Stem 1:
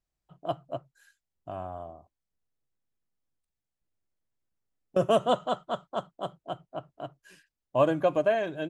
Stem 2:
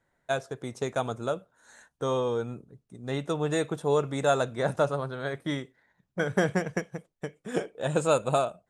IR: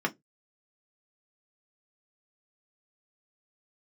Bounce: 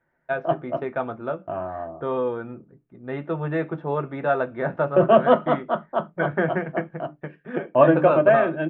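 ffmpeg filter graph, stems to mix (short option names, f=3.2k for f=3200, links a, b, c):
-filter_complex "[0:a]agate=range=-16dB:threshold=-52dB:ratio=16:detection=peak,volume=2dB,asplit=2[a][b];[b]volume=-6.5dB[c];[1:a]volume=-3dB,asplit=2[d][e];[e]volume=-8.5dB[f];[2:a]atrim=start_sample=2205[g];[c][f]amix=inputs=2:normalize=0[h];[h][g]afir=irnorm=-1:irlink=0[i];[a][d][i]amix=inputs=3:normalize=0,lowpass=f=2.5k:w=0.5412,lowpass=f=2.5k:w=1.3066,bandreject=f=1.1k:w=26"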